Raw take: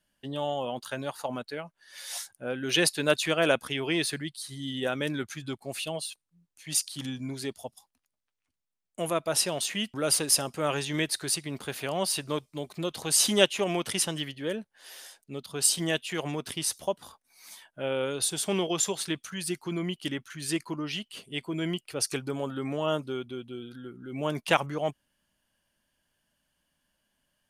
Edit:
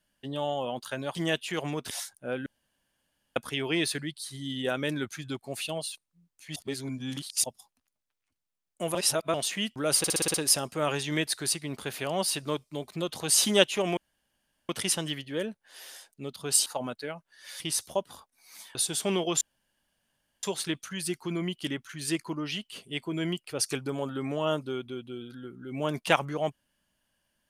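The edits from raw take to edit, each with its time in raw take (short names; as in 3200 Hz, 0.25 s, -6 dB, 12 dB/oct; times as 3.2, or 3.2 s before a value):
1.15–2.09 swap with 15.76–16.52
2.64–3.54 room tone
6.74–7.62 reverse
9.13–9.52 reverse
10.16 stutter 0.06 s, 7 plays
13.79 insert room tone 0.72 s
17.67–18.18 cut
18.84 insert room tone 1.02 s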